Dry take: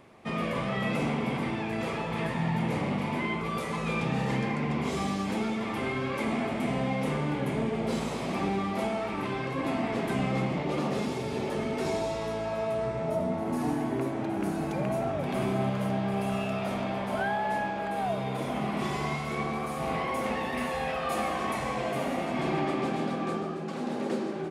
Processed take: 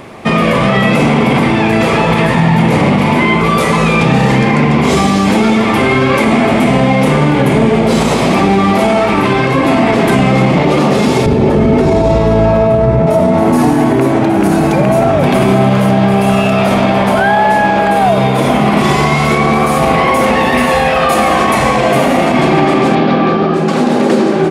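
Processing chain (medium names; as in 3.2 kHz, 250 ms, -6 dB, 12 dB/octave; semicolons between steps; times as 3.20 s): 11.26–13.07 s: tilt EQ -3 dB/octave; 22.95–23.54 s: low-pass 4.6 kHz 24 dB/octave; loudness maximiser +24 dB; trim -1 dB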